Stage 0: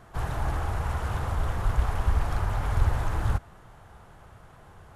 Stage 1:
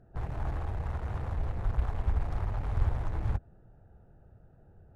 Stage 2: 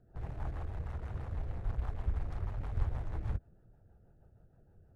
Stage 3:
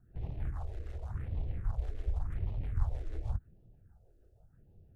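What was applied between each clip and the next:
local Wiener filter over 41 samples; treble shelf 7.8 kHz -11.5 dB; trim -4.5 dB
rotary cabinet horn 6.3 Hz; trim -4 dB
phase shifter stages 4, 0.89 Hz, lowest notch 150–1500 Hz; trim +1 dB

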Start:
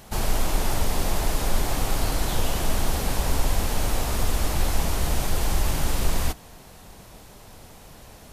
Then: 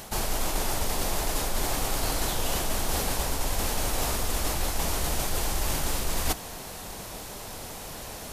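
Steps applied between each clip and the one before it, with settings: tone controls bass -5 dB, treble +3 dB; reverse; compression 10:1, threshold -31 dBFS, peak gain reduction 13 dB; reverse; trim +8 dB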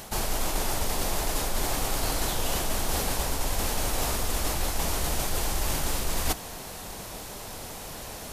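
no audible change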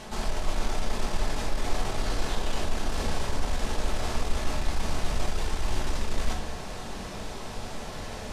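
saturation -28.5 dBFS, distortion -10 dB; distance through air 76 m; reverberation RT60 0.65 s, pre-delay 5 ms, DRR -0.5 dB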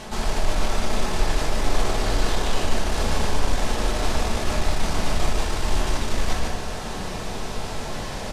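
delay 148 ms -3 dB; trim +5 dB

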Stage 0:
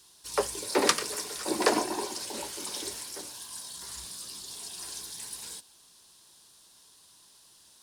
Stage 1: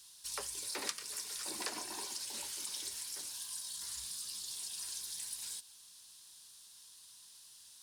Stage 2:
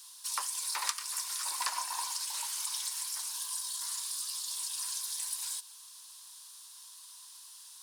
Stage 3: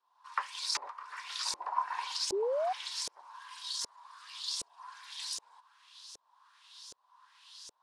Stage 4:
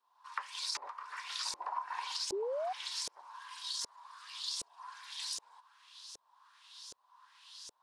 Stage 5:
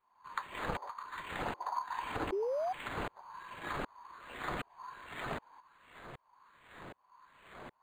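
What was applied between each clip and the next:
amplifier tone stack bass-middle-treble 5-5-5; compression 3:1, threshold -47 dBFS, peak gain reduction 16 dB; trim +7 dB
resonant high-pass 1 kHz, resonance Q 4.5; tilt EQ +2 dB/octave
LFO low-pass saw up 1.3 Hz 460–6600 Hz; painted sound rise, 2.32–2.73 s, 370–780 Hz -31 dBFS
compression 6:1, threshold -34 dBFS, peak gain reduction 9 dB
in parallel at -11 dB: short-mantissa float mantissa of 2-bit; on the sum: decimation joined by straight lines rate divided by 8×

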